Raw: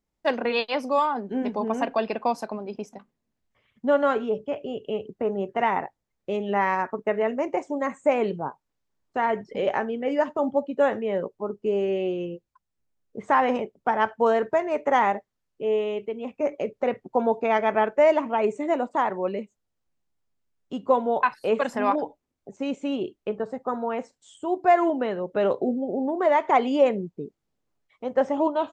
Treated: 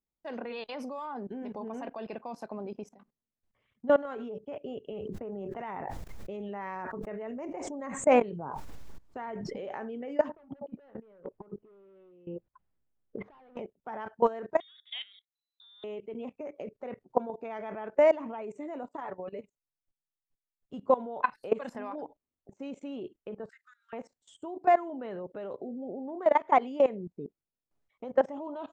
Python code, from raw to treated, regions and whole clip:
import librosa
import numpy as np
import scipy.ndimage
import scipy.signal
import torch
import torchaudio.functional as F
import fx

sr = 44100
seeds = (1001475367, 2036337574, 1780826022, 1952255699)

y = fx.chain(x, sr, fx.low_shelf(hz=100.0, db=9.5),
    fx.sustainer(db_per_s=25.0), at=(4.92, 9.57))
y = fx.chain(y, sr, fx.clip_hard(threshold_db=-24.5),
    fx.over_compress(threshold_db=-40.0, ratio=-1.0),
    fx.gaussian_blur(sigma=2.8), at=(10.29, 13.57))
y = fx.chain(y, sr, fx.level_steps(step_db=20),
    fx.freq_invert(carrier_hz=4000), at=(14.6, 15.84))
y = fx.chain(y, sr, fx.comb(ms=7.0, depth=0.48),
    fx.level_steps(step_db=10), at=(18.83, 20.74))
y = fx.chain(y, sr, fx.steep_highpass(hz=1500.0, slope=72),
    fx.band_squash(depth_pct=100), at=(23.49, 23.93))
y = fx.high_shelf(y, sr, hz=2100.0, db=-5.0)
y = fx.level_steps(y, sr, step_db=19)